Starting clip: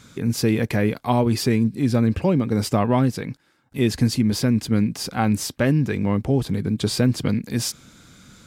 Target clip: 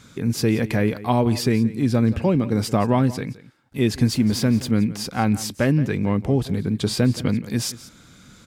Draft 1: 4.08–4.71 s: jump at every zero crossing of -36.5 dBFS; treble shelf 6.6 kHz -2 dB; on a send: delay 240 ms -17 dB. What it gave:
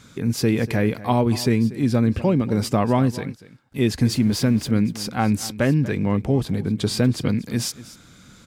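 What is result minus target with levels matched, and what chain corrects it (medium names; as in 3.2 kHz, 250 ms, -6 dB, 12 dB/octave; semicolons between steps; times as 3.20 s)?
echo 67 ms late
4.08–4.71 s: jump at every zero crossing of -36.5 dBFS; treble shelf 6.6 kHz -2 dB; on a send: delay 173 ms -17 dB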